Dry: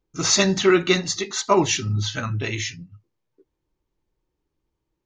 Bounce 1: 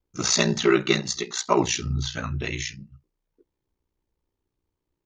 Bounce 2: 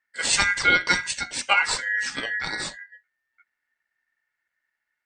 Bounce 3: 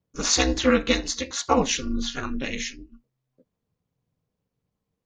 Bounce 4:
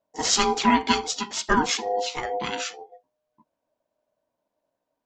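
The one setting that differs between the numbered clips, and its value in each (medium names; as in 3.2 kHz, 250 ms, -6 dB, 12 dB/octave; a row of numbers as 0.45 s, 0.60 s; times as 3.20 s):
ring modulator, frequency: 30 Hz, 1.8 kHz, 130 Hz, 610 Hz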